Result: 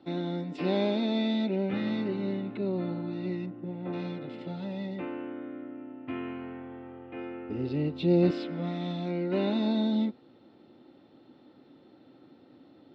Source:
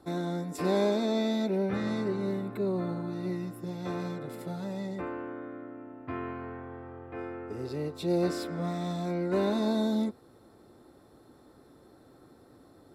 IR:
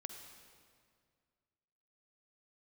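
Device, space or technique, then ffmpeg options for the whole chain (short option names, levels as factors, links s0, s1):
kitchen radio: -filter_complex "[0:a]asplit=3[s0][s1][s2];[s0]afade=t=out:st=3.45:d=0.02[s3];[s1]lowpass=1500,afade=t=in:st=3.45:d=0.02,afade=t=out:st=3.92:d=0.02[s4];[s2]afade=t=in:st=3.92:d=0.02[s5];[s3][s4][s5]amix=inputs=3:normalize=0,highpass=170,equalizer=f=270:t=q:w=4:g=3,equalizer=f=430:t=q:w=4:g=-7,equalizer=f=680:t=q:w=4:g=-5,equalizer=f=1100:t=q:w=4:g=-10,equalizer=f=1600:t=q:w=4:g=-7,equalizer=f=2900:t=q:w=4:g=8,lowpass=f=3900:w=0.5412,lowpass=f=3900:w=1.3066,asettb=1/sr,asplit=3[s6][s7][s8];[s6]atrim=end=7.494[s9];[s7]atrim=start=7.49:end=8.31,asetpts=PTS-STARTPTS,afade=t=in:d=0.004:c=qsin,afade=t=out:st=0.816:d=0.004:c=qsin,lowshelf=f=240:g=11.5[s10];[s8]atrim=start=8.306[s11];[s9][s10]acrossfade=d=0.004:c1=hsin:c2=qsin[s12];[s12][s11]acrossfade=d=0.004:c1=qsin:c2=hsin,volume=1.33"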